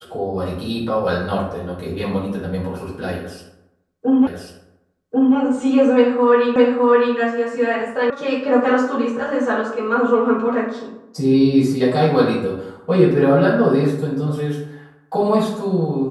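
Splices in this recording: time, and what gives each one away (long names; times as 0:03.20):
0:04.27: the same again, the last 1.09 s
0:06.56: the same again, the last 0.61 s
0:08.10: cut off before it has died away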